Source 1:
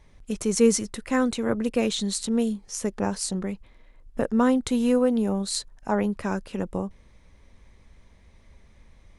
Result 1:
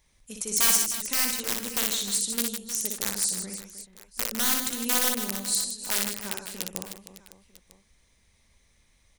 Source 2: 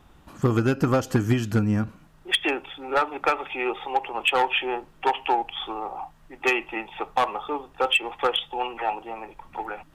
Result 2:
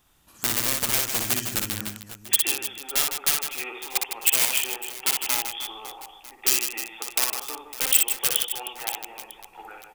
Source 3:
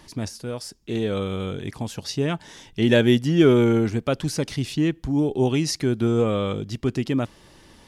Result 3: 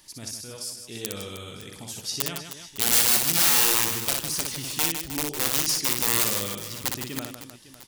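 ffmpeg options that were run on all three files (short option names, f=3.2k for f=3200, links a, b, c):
-af "aeval=exprs='(mod(5.31*val(0)+1,2)-1)/5.31':c=same,aecho=1:1:60|156|309.6|555.4|948.6:0.631|0.398|0.251|0.158|0.1,crystalizer=i=7:c=0,volume=-14.5dB"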